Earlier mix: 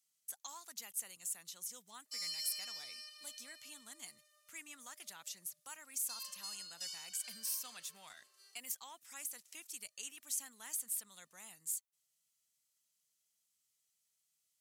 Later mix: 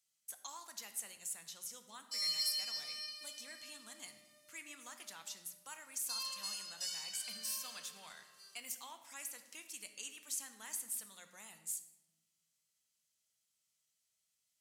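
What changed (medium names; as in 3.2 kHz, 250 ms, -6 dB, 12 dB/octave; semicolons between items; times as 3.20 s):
speech: add treble shelf 10 kHz -7 dB; reverb: on, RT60 1.1 s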